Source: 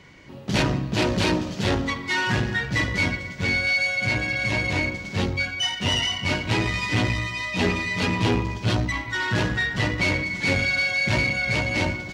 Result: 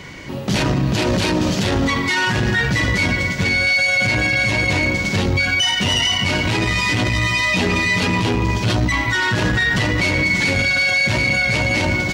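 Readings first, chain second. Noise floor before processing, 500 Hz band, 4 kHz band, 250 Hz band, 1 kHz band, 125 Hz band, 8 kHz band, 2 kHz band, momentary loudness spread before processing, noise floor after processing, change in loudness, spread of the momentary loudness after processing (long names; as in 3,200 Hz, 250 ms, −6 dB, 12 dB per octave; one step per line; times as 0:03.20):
−36 dBFS, +5.0 dB, +7.0 dB, +5.5 dB, +6.0 dB, +5.5 dB, +8.5 dB, +6.5 dB, 5 LU, −23 dBFS, +6.5 dB, 4 LU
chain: high-shelf EQ 7,400 Hz +6.5 dB
in parallel at +1 dB: compressor whose output falls as the input rises −26 dBFS
on the sum: brickwall limiter −15 dBFS, peak gain reduction 8.5 dB
level +5.5 dB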